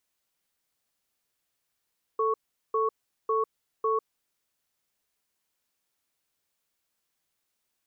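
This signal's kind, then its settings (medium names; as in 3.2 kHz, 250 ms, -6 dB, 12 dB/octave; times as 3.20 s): cadence 442 Hz, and 1.11 kHz, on 0.15 s, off 0.40 s, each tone -25.5 dBFS 2.05 s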